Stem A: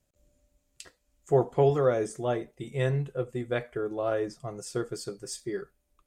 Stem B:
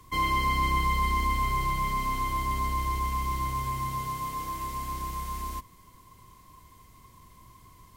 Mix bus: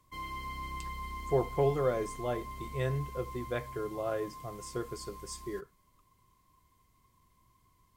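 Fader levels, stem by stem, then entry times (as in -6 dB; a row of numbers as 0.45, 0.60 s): -5.5, -14.5 dB; 0.00, 0.00 s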